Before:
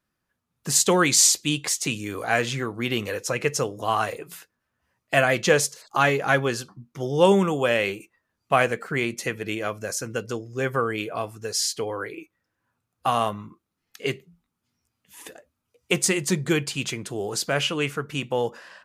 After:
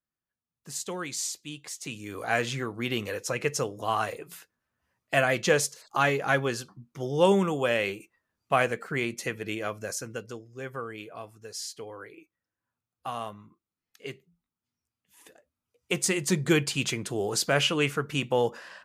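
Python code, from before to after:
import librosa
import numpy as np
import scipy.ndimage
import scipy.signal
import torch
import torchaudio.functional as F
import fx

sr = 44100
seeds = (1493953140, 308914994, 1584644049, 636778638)

y = fx.gain(x, sr, db=fx.line((1.63, -15.5), (2.26, -4.0), (9.9, -4.0), (10.5, -12.0), (15.26, -12.0), (16.54, 0.0)))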